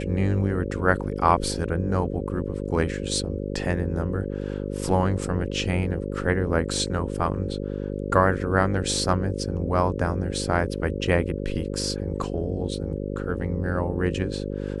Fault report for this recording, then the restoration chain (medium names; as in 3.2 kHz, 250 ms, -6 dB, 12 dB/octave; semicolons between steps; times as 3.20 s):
buzz 50 Hz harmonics 11 -30 dBFS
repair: de-hum 50 Hz, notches 11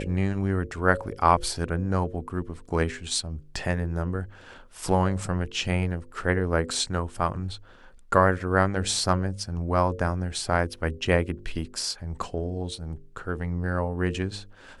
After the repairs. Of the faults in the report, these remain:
nothing left